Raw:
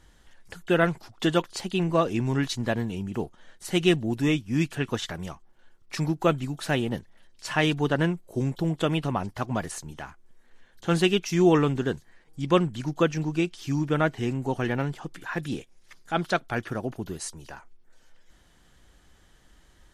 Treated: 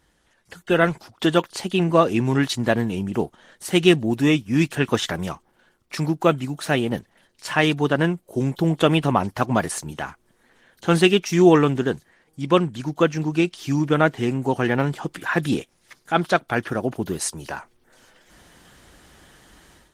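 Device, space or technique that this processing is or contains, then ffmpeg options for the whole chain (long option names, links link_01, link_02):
video call: -af "highpass=frequency=140:poles=1,dynaudnorm=framelen=420:gausssize=3:maxgain=14.5dB,volume=-1dB" -ar 48000 -c:a libopus -b:a 24k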